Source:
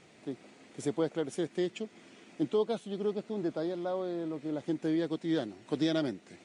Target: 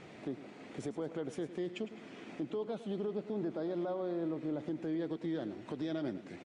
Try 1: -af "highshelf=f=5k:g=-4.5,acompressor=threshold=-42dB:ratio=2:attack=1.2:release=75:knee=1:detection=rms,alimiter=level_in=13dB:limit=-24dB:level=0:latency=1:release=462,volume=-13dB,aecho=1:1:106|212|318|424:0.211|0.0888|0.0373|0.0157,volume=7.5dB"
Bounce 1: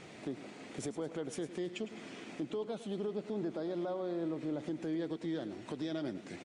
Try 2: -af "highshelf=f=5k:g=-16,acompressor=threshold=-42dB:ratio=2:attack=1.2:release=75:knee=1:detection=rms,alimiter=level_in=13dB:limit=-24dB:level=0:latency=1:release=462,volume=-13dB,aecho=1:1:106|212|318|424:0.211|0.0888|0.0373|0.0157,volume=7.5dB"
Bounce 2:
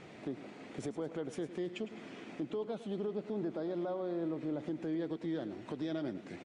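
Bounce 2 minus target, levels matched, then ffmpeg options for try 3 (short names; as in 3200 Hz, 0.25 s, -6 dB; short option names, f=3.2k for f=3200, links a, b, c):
compressor: peak gain reduction +4 dB
-af "highshelf=f=5k:g=-16,acompressor=threshold=-34dB:ratio=2:attack=1.2:release=75:knee=1:detection=rms,alimiter=level_in=13dB:limit=-24dB:level=0:latency=1:release=462,volume=-13dB,aecho=1:1:106|212|318|424:0.211|0.0888|0.0373|0.0157,volume=7.5dB"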